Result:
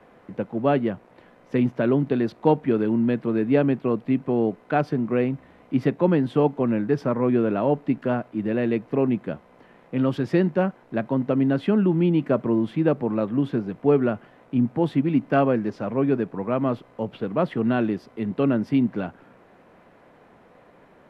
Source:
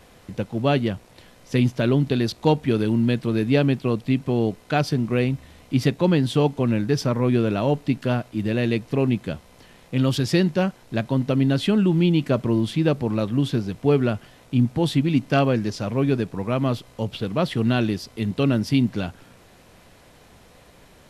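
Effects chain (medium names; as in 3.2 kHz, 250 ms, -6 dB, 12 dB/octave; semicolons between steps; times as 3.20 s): three-band isolator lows -16 dB, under 160 Hz, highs -22 dB, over 2.1 kHz; trim +1 dB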